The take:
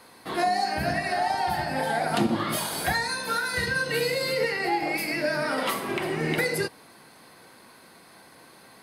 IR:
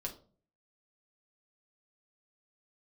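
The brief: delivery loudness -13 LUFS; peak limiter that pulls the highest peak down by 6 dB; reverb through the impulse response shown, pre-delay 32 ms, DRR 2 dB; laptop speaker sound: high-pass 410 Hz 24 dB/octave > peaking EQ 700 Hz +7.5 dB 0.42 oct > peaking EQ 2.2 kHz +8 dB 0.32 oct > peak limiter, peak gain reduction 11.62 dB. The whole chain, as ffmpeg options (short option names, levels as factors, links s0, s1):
-filter_complex "[0:a]alimiter=limit=0.119:level=0:latency=1,asplit=2[s0][s1];[1:a]atrim=start_sample=2205,adelay=32[s2];[s1][s2]afir=irnorm=-1:irlink=0,volume=0.841[s3];[s0][s3]amix=inputs=2:normalize=0,highpass=f=410:w=0.5412,highpass=f=410:w=1.3066,equalizer=f=700:t=o:w=0.42:g=7.5,equalizer=f=2200:t=o:w=0.32:g=8,volume=4.22,alimiter=limit=0.562:level=0:latency=1"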